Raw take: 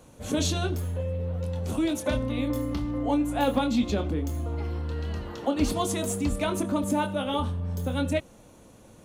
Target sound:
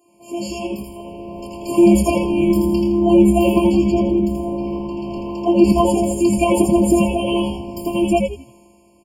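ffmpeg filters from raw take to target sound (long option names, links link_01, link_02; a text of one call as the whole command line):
ffmpeg -i in.wav -filter_complex "[0:a]asettb=1/sr,asplit=3[link_01][link_02][link_03];[link_01]atrim=end=3.674[link_04];[link_02]atrim=start=3.67:end=6.18,asetpts=PTS-STARTPTS,afade=type=in:duration=0.004:curve=qsin,afade=type=out:start_time=2.506:duration=0.004:curve=qsin,highshelf=frequency=2700:gain=-9.5[link_05];[link_03]atrim=start=6.176[link_06];[link_04][link_05]acrossfade=duration=0.004:curve1=hsin:curve2=qsin[link_07];[link_07][link_06]acrossfade=duration=0.004:curve1=qsin:curve2=hsin,afftfilt=real='hypot(re,im)*cos(PI*b)':imag='0':win_size=512:overlap=0.75,highpass=frequency=120:width=0.5412,highpass=frequency=120:width=1.3066,dynaudnorm=framelen=150:gausssize=13:maxgain=15dB,asplit=5[link_08][link_09][link_10][link_11][link_12];[link_09]adelay=82,afreqshift=-140,volume=-4dB[link_13];[link_10]adelay=164,afreqshift=-280,volume=-14.2dB[link_14];[link_11]adelay=246,afreqshift=-420,volume=-24.3dB[link_15];[link_12]adelay=328,afreqshift=-560,volume=-34.5dB[link_16];[link_08][link_13][link_14][link_15][link_16]amix=inputs=5:normalize=0,adynamicequalizer=threshold=0.0224:dfrequency=1400:dqfactor=0.85:tfrequency=1400:tqfactor=0.85:attack=5:release=100:ratio=0.375:range=3.5:mode=cutabove:tftype=bell,afftfilt=real='re*eq(mod(floor(b*sr/1024/1100),2),0)':imag='im*eq(mod(floor(b*sr/1024/1100),2),0)':win_size=1024:overlap=0.75,volume=2dB" out.wav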